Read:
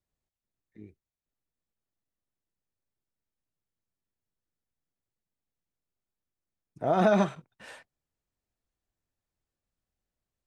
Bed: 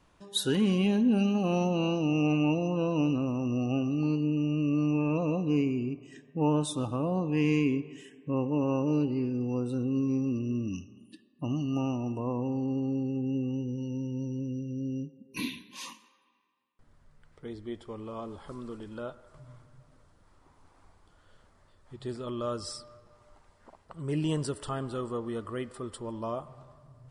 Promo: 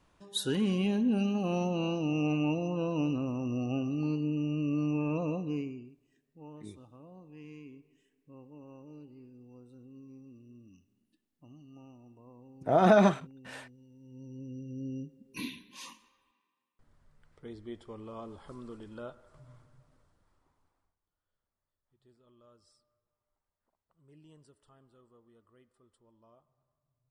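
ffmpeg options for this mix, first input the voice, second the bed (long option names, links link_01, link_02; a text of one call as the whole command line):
ffmpeg -i stem1.wav -i stem2.wav -filter_complex "[0:a]adelay=5850,volume=1.5dB[link_01];[1:a]volume=15dB,afade=type=out:start_time=5.26:duration=0.66:silence=0.105925,afade=type=in:start_time=13.99:duration=0.87:silence=0.11885,afade=type=out:start_time=19.59:duration=1.37:silence=0.0630957[link_02];[link_01][link_02]amix=inputs=2:normalize=0" out.wav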